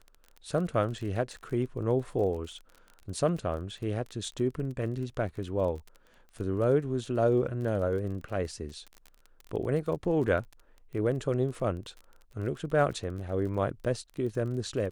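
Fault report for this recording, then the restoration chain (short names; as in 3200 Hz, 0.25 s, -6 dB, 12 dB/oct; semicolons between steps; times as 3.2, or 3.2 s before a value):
crackle 28/s -38 dBFS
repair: de-click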